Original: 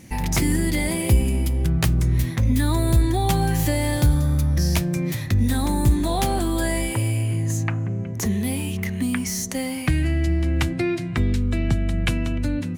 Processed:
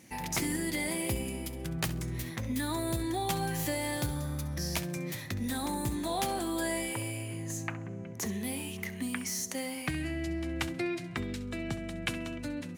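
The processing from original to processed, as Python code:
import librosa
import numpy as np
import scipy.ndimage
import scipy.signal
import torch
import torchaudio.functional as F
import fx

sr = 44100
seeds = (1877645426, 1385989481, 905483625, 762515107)

p1 = fx.highpass(x, sr, hz=310.0, slope=6)
p2 = p1 + fx.echo_feedback(p1, sr, ms=67, feedback_pct=25, wet_db=-15, dry=0)
y = p2 * 10.0 ** (-7.0 / 20.0)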